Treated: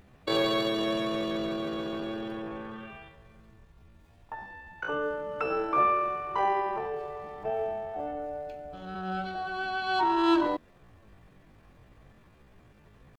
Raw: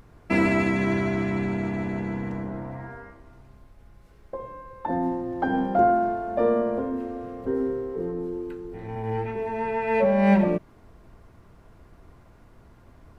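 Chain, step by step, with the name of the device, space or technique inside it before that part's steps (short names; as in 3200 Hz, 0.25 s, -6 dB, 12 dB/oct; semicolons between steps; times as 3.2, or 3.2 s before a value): chipmunk voice (pitch shift +9 st); gain -5 dB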